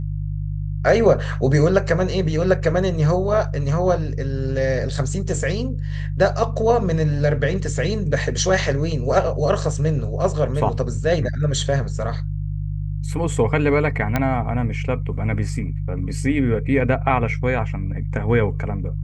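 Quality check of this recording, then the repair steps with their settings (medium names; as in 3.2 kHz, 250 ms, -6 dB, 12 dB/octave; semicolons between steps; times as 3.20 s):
hum 50 Hz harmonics 3 -25 dBFS
14.16 s: pop -7 dBFS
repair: de-click; de-hum 50 Hz, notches 3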